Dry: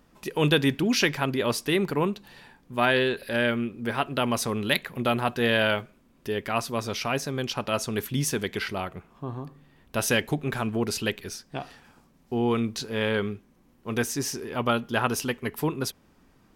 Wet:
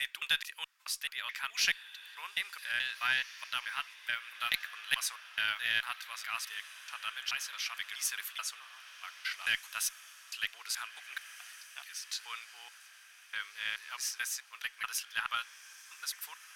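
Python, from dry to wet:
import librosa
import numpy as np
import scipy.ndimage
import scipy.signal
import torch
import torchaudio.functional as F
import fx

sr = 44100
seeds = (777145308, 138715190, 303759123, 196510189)

y = fx.block_reorder(x, sr, ms=215.0, group=4)
y = scipy.signal.sosfilt(scipy.signal.butter(4, 1400.0, 'highpass', fs=sr, output='sos'), y)
y = fx.echo_diffused(y, sr, ms=1722, feedback_pct=50, wet_db=-15.0)
y = fx.cheby_harmonics(y, sr, harmonics=(4,), levels_db=(-28,), full_scale_db=-6.5)
y = y * 10.0 ** (-4.0 / 20.0)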